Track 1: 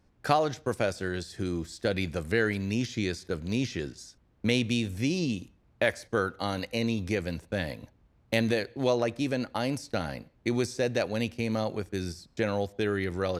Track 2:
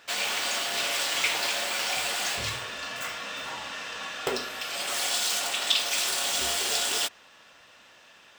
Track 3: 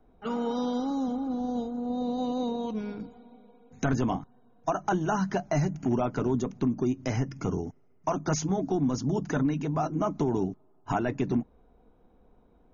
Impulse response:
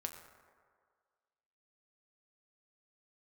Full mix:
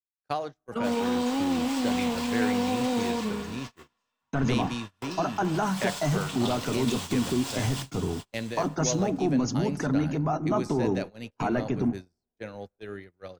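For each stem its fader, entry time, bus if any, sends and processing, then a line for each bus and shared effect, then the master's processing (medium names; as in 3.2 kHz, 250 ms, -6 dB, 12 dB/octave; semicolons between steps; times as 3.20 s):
-8.0 dB, 0.00 s, no bus, send -7.5 dB, no echo send, de-hum 157.5 Hz, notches 3
-11.0 dB, 0.75 s, bus A, send -18.5 dB, echo send -6.5 dB, peaking EQ 1 kHz +13 dB 0.39 oct
+2.0 dB, 0.50 s, bus A, send -11.5 dB, no echo send, none
bus A: 0.0 dB, peak limiter -21 dBFS, peak gain reduction 7 dB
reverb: on, RT60 1.9 s, pre-delay 6 ms
echo: feedback delay 428 ms, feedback 41%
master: gate -33 dBFS, range -30 dB; three bands expanded up and down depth 40%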